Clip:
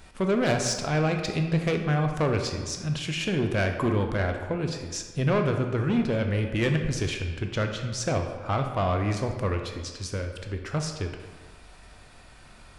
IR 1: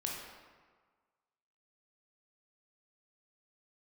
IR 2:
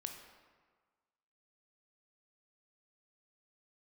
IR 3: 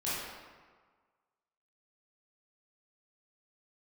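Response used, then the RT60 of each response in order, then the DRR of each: 2; 1.5, 1.5, 1.5 s; -2.0, 4.0, -10.5 dB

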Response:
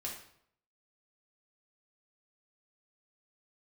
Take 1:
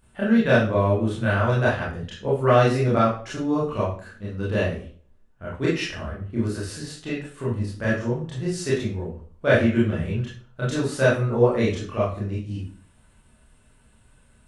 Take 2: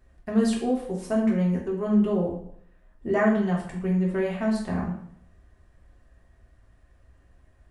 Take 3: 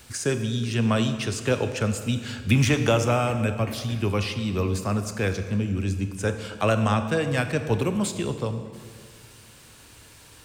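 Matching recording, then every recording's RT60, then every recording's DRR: 2; 0.45, 0.65, 1.9 s; -8.5, -3.5, 8.0 dB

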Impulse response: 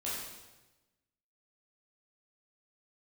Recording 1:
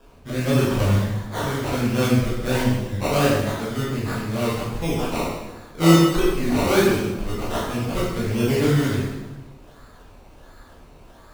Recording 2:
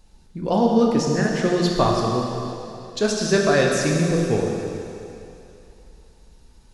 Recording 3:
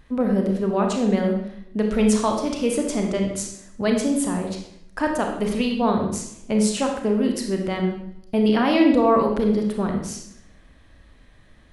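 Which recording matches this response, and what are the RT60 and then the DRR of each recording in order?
1; 1.1, 2.8, 0.75 s; -8.5, -1.5, 2.0 dB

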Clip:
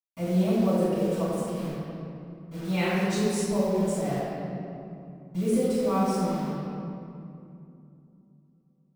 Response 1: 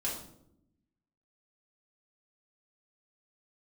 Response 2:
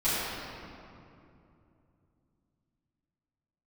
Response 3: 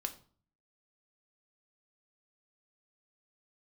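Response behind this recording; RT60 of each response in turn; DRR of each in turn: 2; 0.75, 2.7, 0.45 s; -6.0, -15.5, 5.5 dB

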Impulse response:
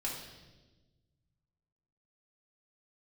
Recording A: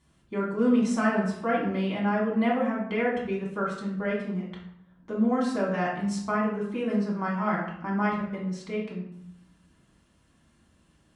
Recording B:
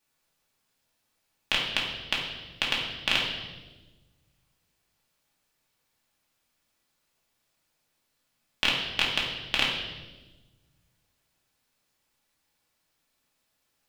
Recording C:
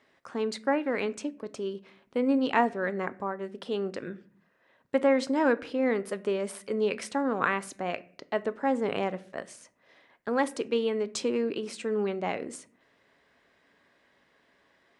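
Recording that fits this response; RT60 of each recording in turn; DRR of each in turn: B; 0.75, 1.2, 0.50 s; -5.5, -4.5, 14.0 dB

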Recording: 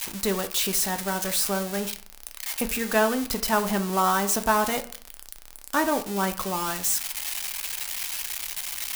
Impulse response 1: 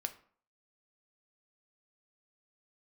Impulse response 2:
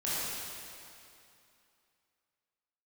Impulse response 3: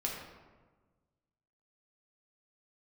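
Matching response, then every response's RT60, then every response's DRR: 1; 0.50, 2.7, 1.4 s; 7.5, -10.5, -2.5 dB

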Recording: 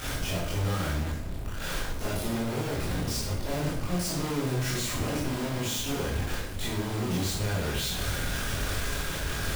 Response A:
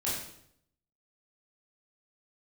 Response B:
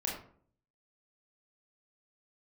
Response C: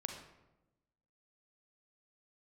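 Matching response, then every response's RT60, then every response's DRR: A; 0.70, 0.55, 1.0 s; -8.0, -3.0, 3.5 dB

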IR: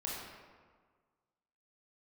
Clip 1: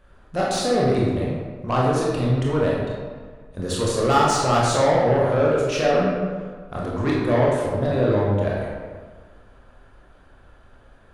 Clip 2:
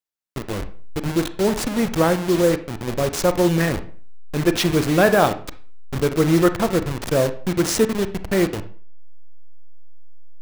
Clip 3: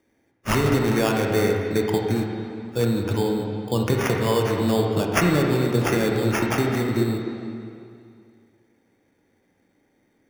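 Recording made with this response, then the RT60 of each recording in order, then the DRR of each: 1; 1.6, 0.45, 2.4 s; -5.0, 10.0, 0.0 dB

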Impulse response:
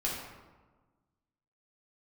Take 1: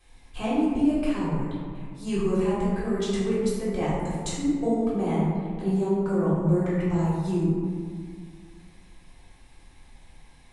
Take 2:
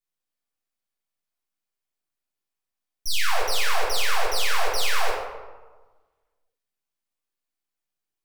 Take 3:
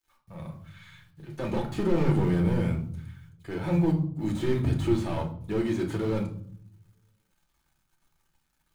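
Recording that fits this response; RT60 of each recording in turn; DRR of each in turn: 2; 1.9, 1.3, 0.60 s; -10.0, -5.5, 1.5 dB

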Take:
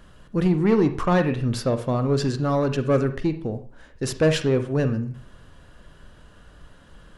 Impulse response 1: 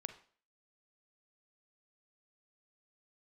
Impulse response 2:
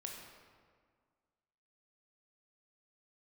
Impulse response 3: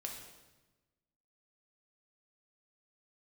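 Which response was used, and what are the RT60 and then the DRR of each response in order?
1; 0.45, 1.8, 1.1 s; 9.0, 0.0, 0.5 dB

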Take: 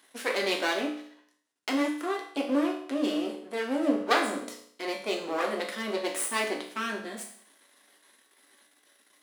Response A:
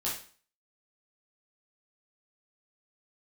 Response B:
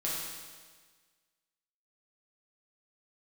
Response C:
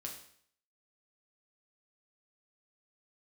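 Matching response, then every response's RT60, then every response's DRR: C; 0.45, 1.5, 0.60 s; -7.0, -6.5, 0.0 dB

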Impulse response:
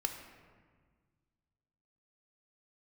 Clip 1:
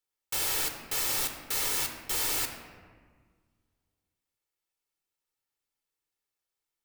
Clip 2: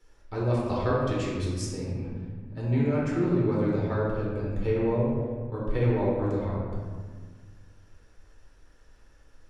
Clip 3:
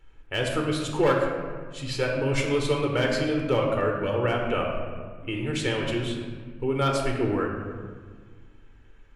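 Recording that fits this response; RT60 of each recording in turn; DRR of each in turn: 1; 1.6, 1.6, 1.6 s; 4.5, -6.5, 0.0 dB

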